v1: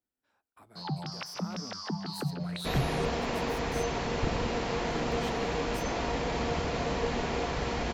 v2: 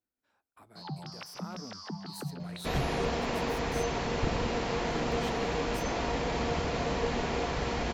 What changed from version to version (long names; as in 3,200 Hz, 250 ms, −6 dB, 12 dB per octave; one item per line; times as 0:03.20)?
first sound −5.0 dB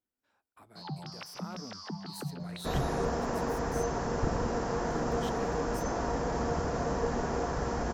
second sound: add flat-topped bell 3,000 Hz −13 dB 1.3 octaves